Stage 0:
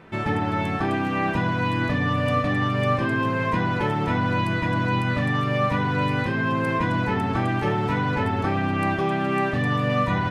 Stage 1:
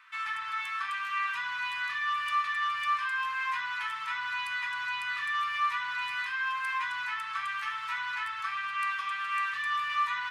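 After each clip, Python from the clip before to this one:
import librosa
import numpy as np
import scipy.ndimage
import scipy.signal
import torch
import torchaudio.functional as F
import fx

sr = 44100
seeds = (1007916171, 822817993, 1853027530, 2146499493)

y = scipy.signal.sosfilt(scipy.signal.ellip(4, 1.0, 40, 1100.0, 'highpass', fs=sr, output='sos'), x)
y = y * librosa.db_to_amplitude(-2.0)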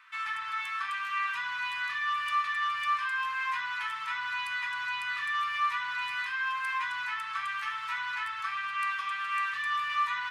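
y = x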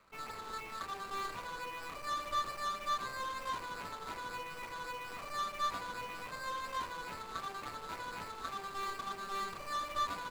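y = scipy.ndimage.median_filter(x, 25, mode='constant')
y = y * librosa.db_to_amplitude(-1.0)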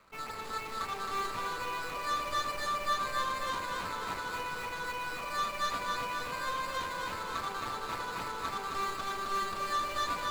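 y = fx.echo_feedback(x, sr, ms=266, feedback_pct=59, wet_db=-4)
y = y * librosa.db_to_amplitude(4.0)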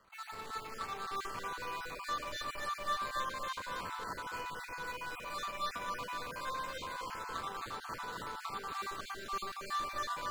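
y = fx.spec_dropout(x, sr, seeds[0], share_pct=21)
y = y * librosa.db_to_amplitude(-4.0)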